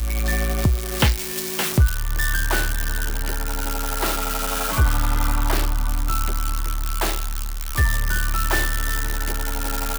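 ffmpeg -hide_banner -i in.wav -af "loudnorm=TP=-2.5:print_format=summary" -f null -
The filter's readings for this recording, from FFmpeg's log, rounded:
Input Integrated:    -23.3 LUFS
Input True Peak:      -7.0 dBTP
Input LRA:             2.0 LU
Input Threshold:     -33.3 LUFS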